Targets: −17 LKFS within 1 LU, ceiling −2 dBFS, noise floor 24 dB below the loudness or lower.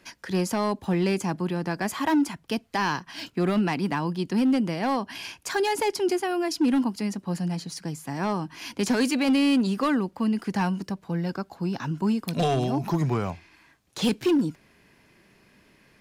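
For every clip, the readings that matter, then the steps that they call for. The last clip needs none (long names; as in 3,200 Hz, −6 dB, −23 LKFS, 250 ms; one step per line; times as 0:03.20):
share of clipped samples 1.2%; peaks flattened at −17.0 dBFS; integrated loudness −26.5 LKFS; sample peak −17.0 dBFS; target loudness −17.0 LKFS
→ clipped peaks rebuilt −17 dBFS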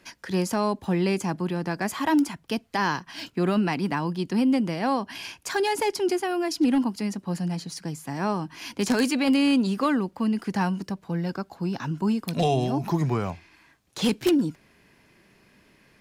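share of clipped samples 0.0%; integrated loudness −26.0 LKFS; sample peak −8.0 dBFS; target loudness −17.0 LKFS
→ level +9 dB
brickwall limiter −2 dBFS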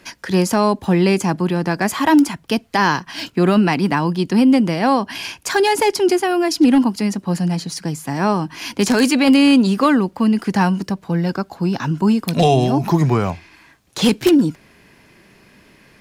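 integrated loudness −17.0 LKFS; sample peak −2.0 dBFS; background noise floor −51 dBFS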